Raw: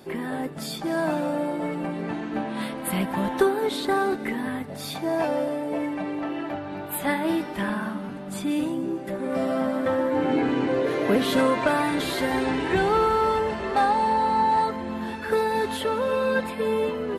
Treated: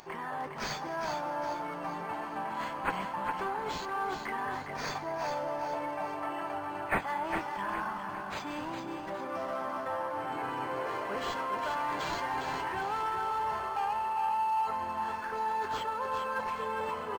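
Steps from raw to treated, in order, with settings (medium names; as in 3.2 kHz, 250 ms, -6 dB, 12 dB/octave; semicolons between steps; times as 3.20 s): graphic EQ 125/250/500/1000/2000/4000/8000 Hz +5/-12/-7/+9/-4/-3/-11 dB; saturation -15.5 dBFS, distortion -17 dB; reverse; compression, threshold -30 dBFS, peak gain reduction 11 dB; reverse; band-stop 3.7 kHz, Q 5.7; upward compressor, threshold -54 dBFS; tone controls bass -9 dB, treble +13 dB; on a send: feedback delay 408 ms, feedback 44%, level -6 dB; on the sum: decimation joined by straight lines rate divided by 4×; trim -1.5 dB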